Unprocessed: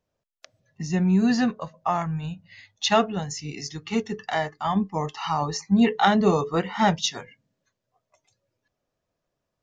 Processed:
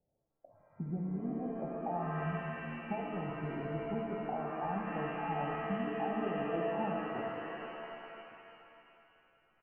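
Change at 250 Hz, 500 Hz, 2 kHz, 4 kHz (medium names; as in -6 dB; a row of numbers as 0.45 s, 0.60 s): -14.5 dB, -9.5 dB, -12.0 dB, -24.0 dB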